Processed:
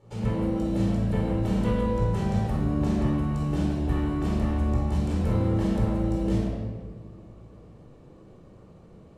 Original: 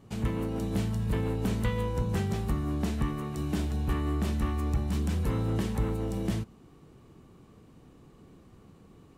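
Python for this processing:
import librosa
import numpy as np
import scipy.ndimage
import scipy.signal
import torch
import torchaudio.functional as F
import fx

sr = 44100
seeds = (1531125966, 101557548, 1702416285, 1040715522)

y = scipy.signal.sosfilt(scipy.signal.butter(2, 10000.0, 'lowpass', fs=sr, output='sos'), x)
y = fx.peak_eq(y, sr, hz=590.0, db=11.5, octaves=0.67)
y = fx.room_shoebox(y, sr, seeds[0], volume_m3=1600.0, walls='mixed', distance_m=4.3)
y = F.gain(torch.from_numpy(y), -7.5).numpy()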